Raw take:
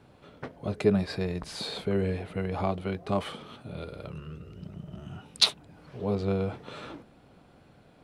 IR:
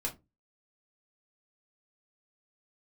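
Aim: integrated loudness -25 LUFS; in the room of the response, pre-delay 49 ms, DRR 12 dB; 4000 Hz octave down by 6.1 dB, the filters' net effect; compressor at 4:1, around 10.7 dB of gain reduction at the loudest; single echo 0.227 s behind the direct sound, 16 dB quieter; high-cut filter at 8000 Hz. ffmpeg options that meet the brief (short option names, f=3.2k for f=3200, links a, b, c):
-filter_complex "[0:a]lowpass=8k,equalizer=f=4k:t=o:g=-6.5,acompressor=threshold=-30dB:ratio=4,aecho=1:1:227:0.158,asplit=2[a][b];[1:a]atrim=start_sample=2205,adelay=49[c];[b][c]afir=irnorm=-1:irlink=0,volume=-14.5dB[d];[a][d]amix=inputs=2:normalize=0,volume=12dB"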